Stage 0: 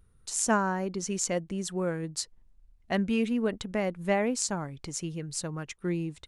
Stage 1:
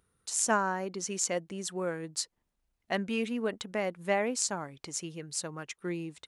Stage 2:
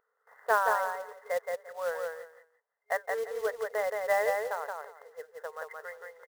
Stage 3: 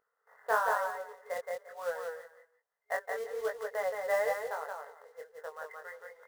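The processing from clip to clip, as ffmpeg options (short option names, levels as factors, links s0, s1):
-af "highpass=f=390:p=1"
-af "afftfilt=real='re*between(b*sr/4096,410,2100)':imag='im*between(b*sr/4096,410,2100)':win_size=4096:overlap=0.75,acrusher=bits=4:mode=log:mix=0:aa=0.000001,aecho=1:1:173|346|519:0.668|0.134|0.0267,volume=1.26"
-af "flanger=delay=19:depth=4.7:speed=1.1"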